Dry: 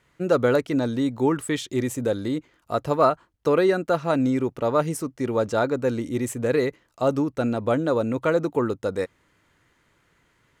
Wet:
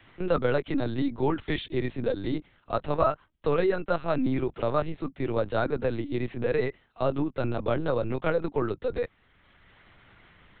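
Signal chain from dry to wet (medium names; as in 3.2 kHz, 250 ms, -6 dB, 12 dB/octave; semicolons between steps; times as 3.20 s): treble shelf 3.1 kHz +9 dB; LPC vocoder at 8 kHz pitch kept; three bands compressed up and down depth 40%; trim -4.5 dB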